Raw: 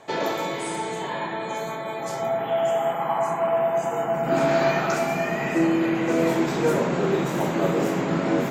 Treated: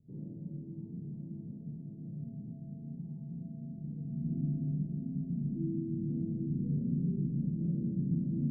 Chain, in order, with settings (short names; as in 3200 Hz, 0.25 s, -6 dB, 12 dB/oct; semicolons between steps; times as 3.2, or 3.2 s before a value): Schroeder reverb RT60 0.3 s, combs from 27 ms, DRR -2 dB; in parallel at +2.5 dB: limiter -16.5 dBFS, peak gain reduction 11 dB; on the sum: inverse Chebyshev low-pass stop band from 1100 Hz, stop band 80 dB; gain -8 dB